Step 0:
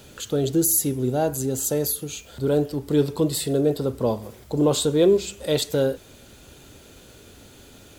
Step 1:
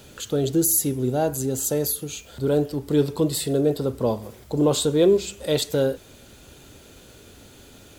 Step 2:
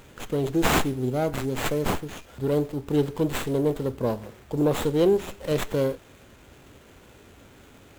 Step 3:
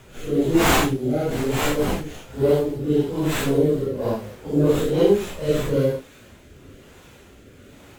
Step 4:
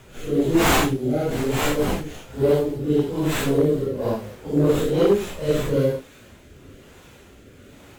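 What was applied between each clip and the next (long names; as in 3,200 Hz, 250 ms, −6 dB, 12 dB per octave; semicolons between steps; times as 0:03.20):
no processing that can be heard
parametric band 15,000 Hz +10.5 dB 1.1 octaves; windowed peak hold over 9 samples; level −3 dB
random phases in long frames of 200 ms; rotating-speaker cabinet horn 1.1 Hz; level +6 dB
hard clipping −10.5 dBFS, distortion −22 dB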